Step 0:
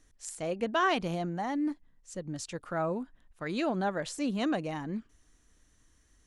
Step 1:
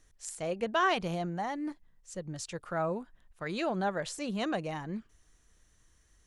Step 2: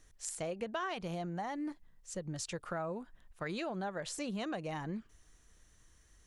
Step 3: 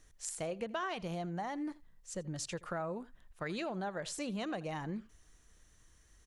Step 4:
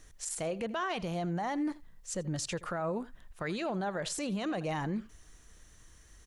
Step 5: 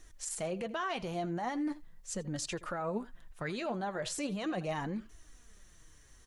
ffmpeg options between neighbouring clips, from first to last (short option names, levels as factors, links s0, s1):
-af "equalizer=f=270:t=o:w=0.36:g=-9.5"
-af "acompressor=threshold=0.0141:ratio=6,volume=1.19"
-af "aecho=1:1:82:0.0891"
-af "alimiter=level_in=2.99:limit=0.0631:level=0:latency=1:release=26,volume=0.335,volume=2.24"
-af "flanger=delay=2.7:depth=6.4:regen=46:speed=0.39:shape=triangular,volume=1.33"